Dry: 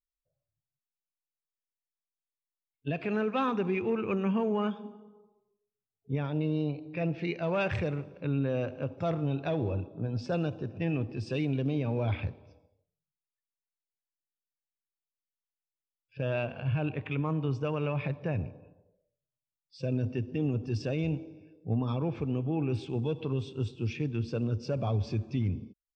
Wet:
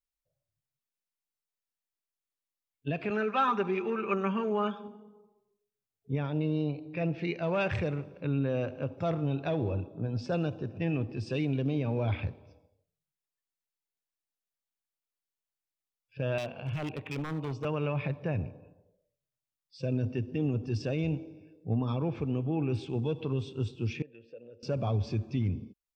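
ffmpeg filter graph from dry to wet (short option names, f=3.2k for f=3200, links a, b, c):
-filter_complex "[0:a]asettb=1/sr,asplit=3[a][b][c];[a]atrim=end=3.104[d];[b]atrim=start=3.1:end=4.88,asetpts=PTS-STARTPTS,afade=t=in:d=0.004:c=qsin,afade=t=out:st=1.776:d=0.004:c=qsin,highpass=f=480:p=1,equalizer=f=1.3k:w=2.9:g=6.5,aecho=1:1:5.1:0.78,atrim=end_sample=78498[e];[c]atrim=start=4.876[f];[d][e]acrossfade=d=0.004:c1=hsin:c2=qsin[g];[g][f]acrossfade=d=0.004:c1=qsin:c2=hsin,asettb=1/sr,asplit=3[h][i][j];[h]atrim=end=16.384[k];[i]atrim=start=16.38:end=17.65,asetpts=PTS-STARTPTS,afade=t=in:d=0.004:c=qsin,afade=t=out:st=1.266:d=0.004:c=qsin,highpass=f=180:p=1,equalizer=f=1.6k:t=o:w=0.59:g=-5.5,aeval=exprs='0.0398*(abs(mod(val(0)/0.0398+3,4)-2)-1)':c=same[l];[j]atrim=start=17.646[m];[k][l]acrossfade=d=0.004:c1=hsin:c2=qsin[n];[n][m]acrossfade=d=0.004:c1=qsin:c2=hsin,asettb=1/sr,asplit=3[o][p][q];[o]atrim=end=24.024[r];[p]atrim=start=24.02:end=24.63,asetpts=PTS-STARTPTS,afade=t=in:d=0.004:c=qsin,afade=t=out:st=0.606:d=0.004:c=qsin,asplit=3[s][t][u];[s]bandpass=f=530:t=q:w=8,volume=0dB[v];[t]bandpass=f=1.84k:t=q:w=8,volume=-6dB[w];[u]bandpass=f=2.48k:t=q:w=8,volume=-9dB[x];[v][w][x]amix=inputs=3:normalize=0,acompressor=threshold=-47dB:ratio=2:attack=3.2:release=140:knee=1:detection=peak[y];[q]atrim=start=24.626[z];[r][y]acrossfade=d=0.004:c1=hsin:c2=qsin[aa];[aa][z]acrossfade=d=0.004:c1=qsin:c2=hsin"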